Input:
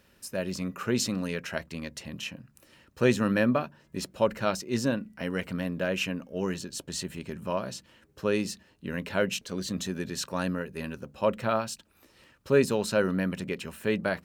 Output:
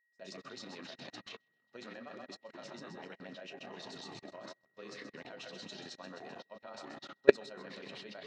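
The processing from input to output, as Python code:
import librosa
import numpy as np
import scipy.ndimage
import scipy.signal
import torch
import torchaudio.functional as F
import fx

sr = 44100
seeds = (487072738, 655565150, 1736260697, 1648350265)

y = fx.echo_pitch(x, sr, ms=110, semitones=-6, count=3, db_per_echo=-6.0)
y = fx.cabinet(y, sr, low_hz=140.0, low_slope=24, high_hz=6100.0, hz=(160.0, 700.0, 3900.0), db=(-5, 7, 7))
y = fx.doubler(y, sr, ms=43.0, db=-13)
y = fx.echo_split(y, sr, split_hz=450.0, low_ms=340, high_ms=225, feedback_pct=52, wet_db=-10)
y = fx.stretch_grains(y, sr, factor=0.58, grain_ms=64.0)
y = fx.low_shelf(y, sr, hz=210.0, db=-10.5)
y = fx.level_steps(y, sr, step_db=20)
y = y + 10.0 ** (-52.0 / 20.0) * np.sin(2.0 * np.pi * 1900.0 * np.arange(len(y)) / sr)
y = fx.upward_expand(y, sr, threshold_db=-51.0, expansion=2.5)
y = F.gain(torch.from_numpy(y), 11.0).numpy()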